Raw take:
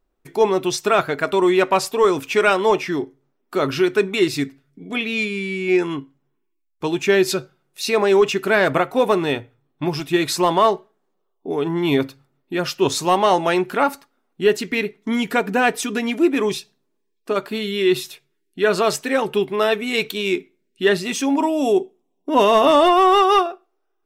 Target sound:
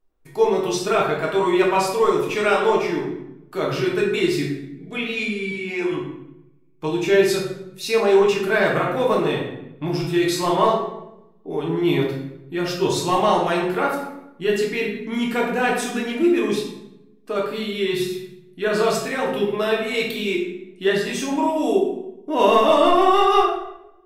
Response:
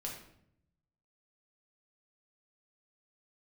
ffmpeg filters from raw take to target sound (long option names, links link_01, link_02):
-filter_complex "[0:a]asettb=1/sr,asplit=3[link_01][link_02][link_03];[link_01]atrim=end=5.514[link_04];[link_02]atrim=start=5.51:end=5.92,asetpts=PTS-STARTPTS,afade=type=in:duration=0.004:curve=qsin,afade=type=out:start_time=0.406:duration=0.004:curve=qsin,highpass=280[link_05];[link_03]atrim=start=5.916[link_06];[link_04][link_05]acrossfade=duration=0.004:curve1=hsin:curve2=qsin[link_07];[link_07][link_06]acrossfade=duration=0.004:curve1=qsin:curve2=hsin[link_08];[1:a]atrim=start_sample=2205,asetrate=34398,aresample=44100[link_09];[link_08][link_09]afir=irnorm=-1:irlink=0,volume=-3dB"